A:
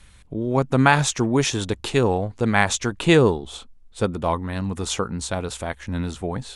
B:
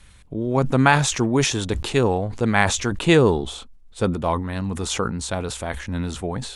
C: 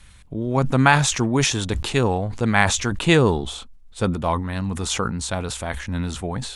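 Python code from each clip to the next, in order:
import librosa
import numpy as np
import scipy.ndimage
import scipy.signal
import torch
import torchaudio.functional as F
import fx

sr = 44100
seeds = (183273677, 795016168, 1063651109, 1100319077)

y1 = fx.sustainer(x, sr, db_per_s=76.0)
y2 = fx.peak_eq(y1, sr, hz=410.0, db=-4.0, octaves=1.3)
y2 = y2 * 10.0 ** (1.5 / 20.0)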